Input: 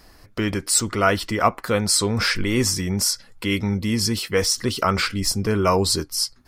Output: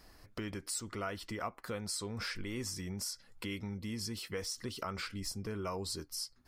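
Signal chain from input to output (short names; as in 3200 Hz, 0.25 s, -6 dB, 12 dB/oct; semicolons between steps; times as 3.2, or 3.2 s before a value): compressor 2.5:1, threshold -32 dBFS, peak gain reduction 13.5 dB; gain -9 dB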